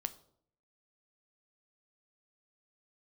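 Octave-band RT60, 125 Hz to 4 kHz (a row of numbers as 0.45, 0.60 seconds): 0.85, 0.75, 0.70, 0.55, 0.40, 0.40 seconds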